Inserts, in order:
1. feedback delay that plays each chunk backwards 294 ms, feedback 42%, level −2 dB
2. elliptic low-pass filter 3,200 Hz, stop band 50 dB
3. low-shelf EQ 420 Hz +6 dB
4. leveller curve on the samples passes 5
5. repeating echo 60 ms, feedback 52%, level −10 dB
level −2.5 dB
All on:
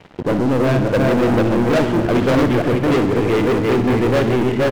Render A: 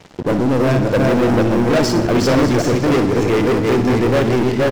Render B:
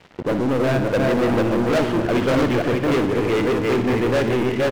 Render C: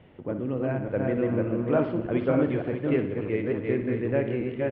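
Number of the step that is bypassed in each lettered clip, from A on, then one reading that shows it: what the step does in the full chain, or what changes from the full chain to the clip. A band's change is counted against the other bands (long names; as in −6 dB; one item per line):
2, 8 kHz band +7.0 dB
3, 125 Hz band −3.0 dB
4, change in crest factor +8.0 dB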